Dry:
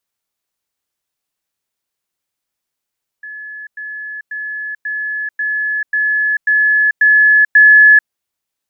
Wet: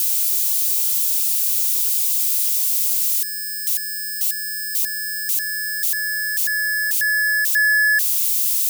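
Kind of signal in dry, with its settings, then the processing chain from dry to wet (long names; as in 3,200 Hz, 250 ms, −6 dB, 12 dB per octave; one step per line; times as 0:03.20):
level staircase 1,710 Hz −27 dBFS, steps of 3 dB, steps 9, 0.44 s 0.10 s
spike at every zero crossing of −15.5 dBFS
parametric band 1,500 Hz −12.5 dB 0.83 octaves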